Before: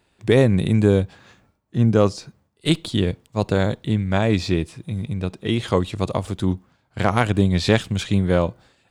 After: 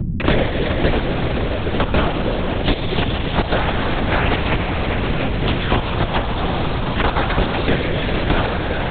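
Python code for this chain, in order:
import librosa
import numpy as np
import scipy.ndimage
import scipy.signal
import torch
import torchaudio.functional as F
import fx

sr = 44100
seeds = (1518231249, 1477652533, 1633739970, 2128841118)

y = scipy.signal.sosfilt(scipy.signal.butter(2, 170.0, 'highpass', fs=sr, output='sos'), x)
y = fx.quant_companded(y, sr, bits=2)
y = fx.add_hum(y, sr, base_hz=50, snr_db=23)
y = fx.rev_freeverb(y, sr, rt60_s=2.7, hf_ratio=1.0, predelay_ms=0, drr_db=2.5)
y = fx.lpc_vocoder(y, sr, seeds[0], excitation='whisper', order=8)
y = fx.band_squash(y, sr, depth_pct=100)
y = F.gain(torch.from_numpy(y), -4.0).numpy()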